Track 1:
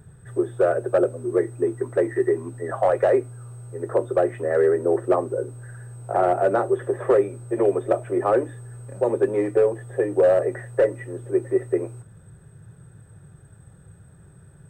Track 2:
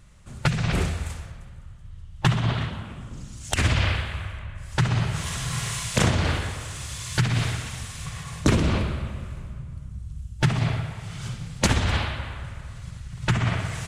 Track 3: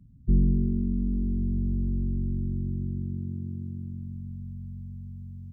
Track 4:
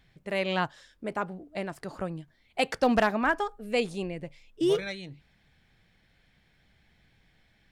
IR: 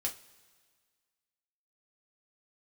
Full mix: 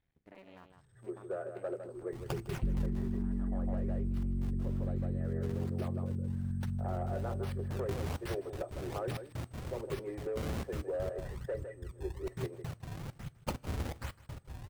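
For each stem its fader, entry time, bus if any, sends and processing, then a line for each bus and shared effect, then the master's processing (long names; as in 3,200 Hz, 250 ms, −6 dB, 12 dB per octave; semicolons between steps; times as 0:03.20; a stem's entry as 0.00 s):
−19.0 dB, 0.70 s, bus A, no send, echo send −9 dB, no processing
0:02.72 −10 dB → 0:03.42 −19 dB → 0:07.39 −19 dB → 0:07.88 −8.5 dB, 1.85 s, no bus, send −15 dB, echo send −18 dB, downward compressor 12 to 1, threshold −25 dBFS, peak gain reduction 11.5 dB; sample-and-hold swept by an LFO 29×, swing 160% 1.2 Hz; gate pattern ".x.xxx.x." 164 BPM −60 dB
+3.0 dB, 2.35 s, bus A, no send, no echo send, no processing
−16.5 dB, 0.00 s, bus A, send −14.5 dB, echo send −6.5 dB, sub-harmonics by changed cycles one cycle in 2, muted; high-shelf EQ 2,400 Hz −9.5 dB; downward compressor 5 to 1, threshold −36 dBFS, peak gain reduction 13.5 dB
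bus A: 0.0 dB, downward compressor 6 to 1, threshold −31 dBFS, peak gain reduction 15.5 dB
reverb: on, pre-delay 3 ms
echo: single-tap delay 156 ms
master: no processing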